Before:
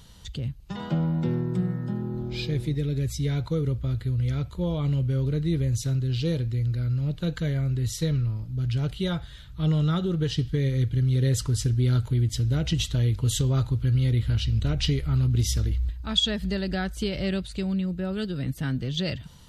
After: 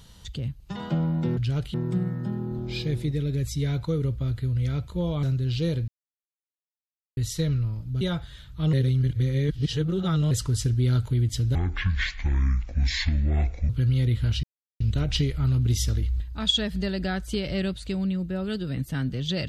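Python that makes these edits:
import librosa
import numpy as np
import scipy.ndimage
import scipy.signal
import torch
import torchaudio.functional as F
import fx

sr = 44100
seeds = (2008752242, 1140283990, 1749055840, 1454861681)

y = fx.edit(x, sr, fx.cut(start_s=4.86, length_s=1.0),
    fx.silence(start_s=6.51, length_s=1.29),
    fx.move(start_s=8.64, length_s=0.37, to_s=1.37),
    fx.reverse_span(start_s=9.73, length_s=1.58),
    fx.speed_span(start_s=12.55, length_s=1.2, speed=0.56),
    fx.insert_silence(at_s=14.49, length_s=0.37), tone=tone)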